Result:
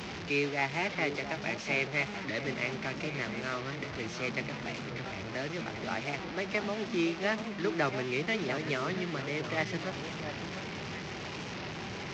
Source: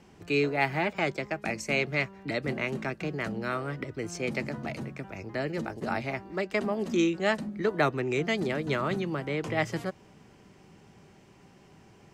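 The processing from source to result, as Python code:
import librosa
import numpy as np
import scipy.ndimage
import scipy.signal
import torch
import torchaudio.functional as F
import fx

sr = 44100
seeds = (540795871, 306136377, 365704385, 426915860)

p1 = fx.delta_mod(x, sr, bps=32000, step_db=-29.5)
p2 = scipy.signal.sosfilt(scipy.signal.butter(2, 55.0, 'highpass', fs=sr, output='sos'), p1)
p3 = fx.peak_eq(p2, sr, hz=2300.0, db=5.0, octaves=0.87)
p4 = p3 + fx.echo_alternate(p3, sr, ms=688, hz=1400.0, feedback_pct=54, wet_db=-8, dry=0)
p5 = fx.record_warp(p4, sr, rpm=45.0, depth_cents=100.0)
y = F.gain(torch.from_numpy(p5), -5.5).numpy()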